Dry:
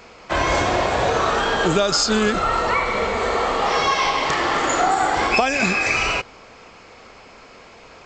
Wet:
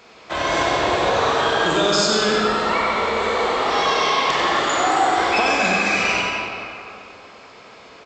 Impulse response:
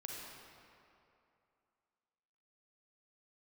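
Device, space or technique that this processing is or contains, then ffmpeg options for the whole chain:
PA in a hall: -filter_complex "[0:a]highpass=frequency=150:poles=1,equalizer=frequency=3600:width_type=o:width=0.38:gain=6,aecho=1:1:94:0.422[link_01];[1:a]atrim=start_sample=2205[link_02];[link_01][link_02]afir=irnorm=-1:irlink=0,volume=1.5dB"

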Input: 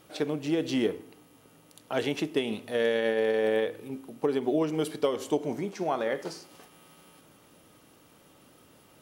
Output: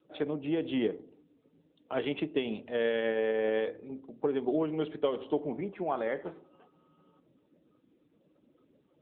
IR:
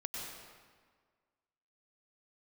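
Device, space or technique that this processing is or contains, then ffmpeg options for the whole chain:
mobile call with aggressive noise cancelling: -af "highpass=120,afftdn=noise_reduction=33:noise_floor=-51,volume=-2.5dB" -ar 8000 -c:a libopencore_amrnb -b:a 10200

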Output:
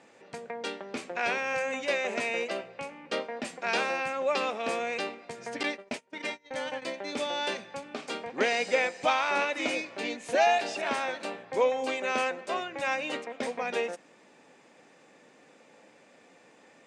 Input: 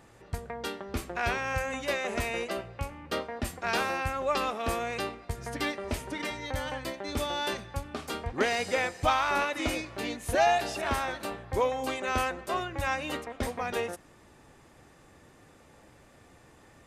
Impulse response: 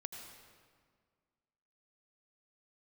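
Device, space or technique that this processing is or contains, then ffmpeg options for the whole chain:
television speaker: -filter_complex "[0:a]lowpass=10000,highpass=frequency=200:width=0.5412,highpass=frequency=200:width=1.3066,equalizer=frequency=350:width_type=q:width=4:gain=-4,equalizer=frequency=510:width_type=q:width=4:gain=4,equalizer=frequency=1200:width_type=q:width=4:gain=-4,equalizer=frequency=2400:width_type=q:width=4:gain=5,lowpass=frequency=8600:width=0.5412,lowpass=frequency=8600:width=1.3066,asettb=1/sr,asplit=3[link_01][link_02][link_03];[link_01]atrim=end=5.634[link_04];[link_02]atrim=start=5.63:end=6.82,asetpts=PTS-STARTPTS,afade=type=in:duration=0.004:curve=qsin,afade=type=out:start_time=1.186:duration=0.004:curve=qsin,agate=range=-28dB:threshold=-34dB:ratio=16:detection=peak[link_05];[link_03]atrim=start=6.816[link_06];[link_04][link_05]acrossfade=duration=0.004:curve1=hsin:curve2=qsin[link_07];[link_07][link_06]acrossfade=duration=0.004:curve1=qsin:curve2=hsin"

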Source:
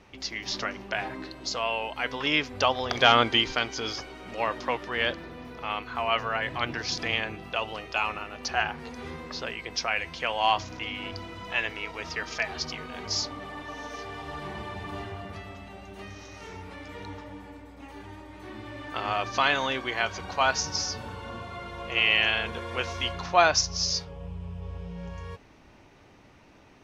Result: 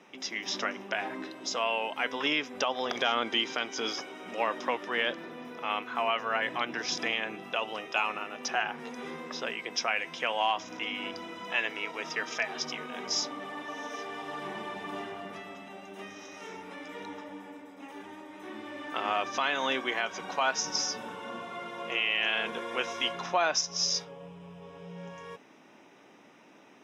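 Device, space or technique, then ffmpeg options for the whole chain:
PA system with an anti-feedback notch: -af "highpass=frequency=190:width=0.5412,highpass=frequency=190:width=1.3066,asuperstop=centerf=4400:order=4:qfactor=6.1,alimiter=limit=-16dB:level=0:latency=1:release=202"

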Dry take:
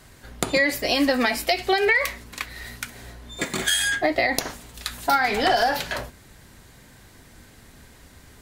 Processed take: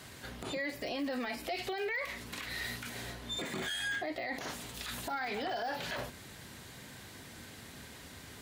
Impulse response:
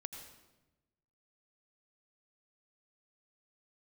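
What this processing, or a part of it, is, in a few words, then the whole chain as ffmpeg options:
broadcast voice chain: -af "highpass=93,deesser=0.85,acompressor=threshold=-33dB:ratio=4,equalizer=frequency=3300:width_type=o:width=1.1:gain=4,alimiter=level_in=4.5dB:limit=-24dB:level=0:latency=1:release=31,volume=-4.5dB"

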